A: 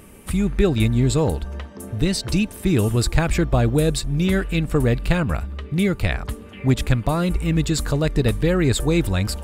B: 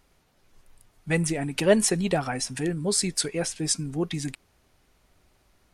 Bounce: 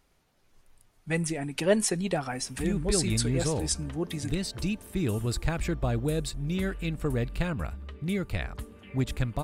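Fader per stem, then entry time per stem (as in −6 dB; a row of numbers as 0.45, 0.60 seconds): −10.0, −4.0 decibels; 2.30, 0.00 seconds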